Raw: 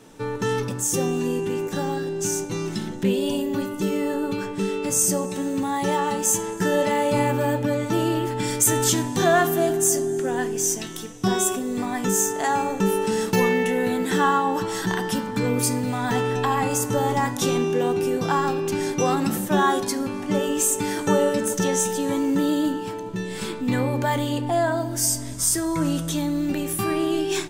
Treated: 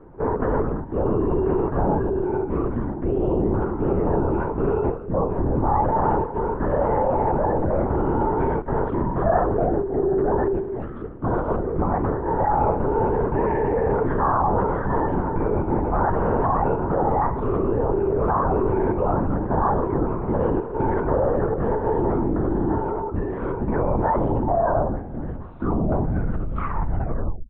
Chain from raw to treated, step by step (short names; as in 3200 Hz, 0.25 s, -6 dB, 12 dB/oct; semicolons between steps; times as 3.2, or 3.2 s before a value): tape stop at the end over 2.47 s; notches 50/100/150/200/250 Hz; in parallel at +2 dB: negative-ratio compressor -25 dBFS, ratio -0.5; on the sum: dynamic EQ 880 Hz, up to +4 dB, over -28 dBFS, Q 0.84; LPF 1300 Hz 24 dB/oct; LPC vocoder at 8 kHz whisper; gain -4.5 dB